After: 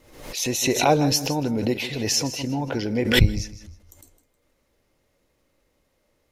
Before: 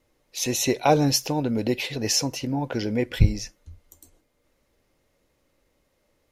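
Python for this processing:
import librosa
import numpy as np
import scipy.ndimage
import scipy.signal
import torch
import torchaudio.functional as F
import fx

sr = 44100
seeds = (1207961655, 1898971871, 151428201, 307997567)

p1 = x + fx.echo_feedback(x, sr, ms=157, feedback_pct=23, wet_db=-14.0, dry=0)
y = fx.pre_swell(p1, sr, db_per_s=78.0)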